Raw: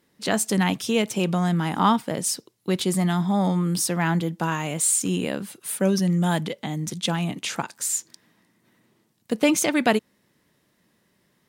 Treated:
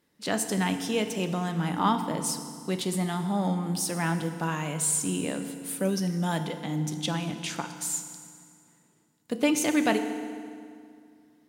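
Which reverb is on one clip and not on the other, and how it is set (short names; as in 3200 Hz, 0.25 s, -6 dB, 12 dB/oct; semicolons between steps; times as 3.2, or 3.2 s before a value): FDN reverb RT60 2.2 s, low-frequency decay 1.25×, high-frequency decay 0.8×, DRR 7 dB; gain -5.5 dB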